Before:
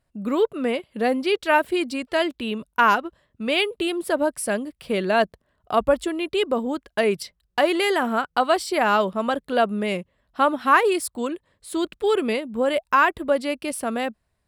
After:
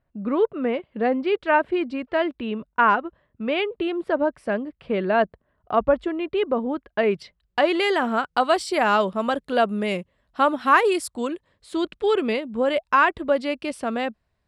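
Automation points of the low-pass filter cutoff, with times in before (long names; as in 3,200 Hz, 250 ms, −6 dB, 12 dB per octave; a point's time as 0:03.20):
0:06.86 2,100 Hz
0:07.74 5,300 Hz
0:08.52 9,200 Hz
0:11.07 9,200 Hz
0:11.74 5,300 Hz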